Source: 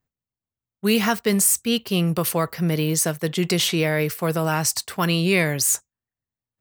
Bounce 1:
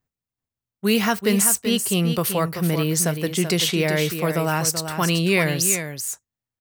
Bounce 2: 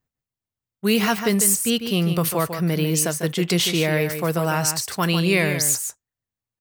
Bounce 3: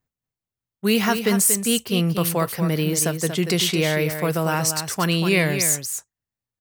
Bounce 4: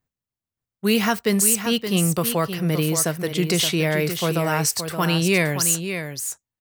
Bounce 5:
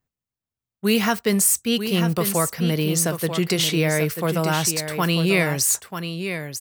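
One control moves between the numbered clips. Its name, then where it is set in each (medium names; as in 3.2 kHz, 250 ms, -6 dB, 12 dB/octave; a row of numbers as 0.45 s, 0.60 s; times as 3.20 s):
delay, time: 384 ms, 148 ms, 235 ms, 572 ms, 940 ms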